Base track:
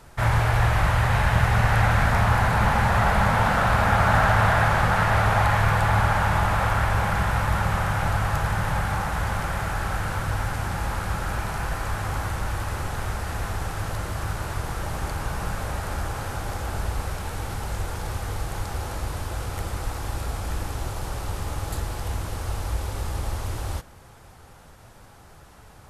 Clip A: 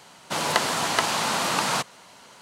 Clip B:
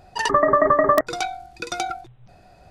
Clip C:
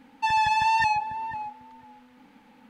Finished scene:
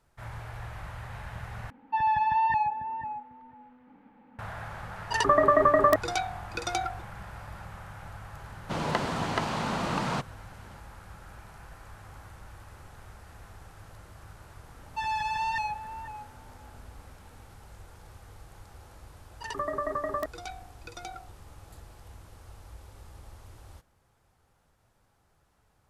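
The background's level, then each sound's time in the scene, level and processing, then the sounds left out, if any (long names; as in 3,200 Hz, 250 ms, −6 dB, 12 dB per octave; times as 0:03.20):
base track −20 dB
0:01.70: overwrite with C −1.5 dB + low-pass filter 1,500 Hz
0:04.95: mix in B −4 dB
0:08.39: mix in A −6 dB + RIAA equalisation playback
0:14.74: mix in C −8 dB
0:19.25: mix in B −15 dB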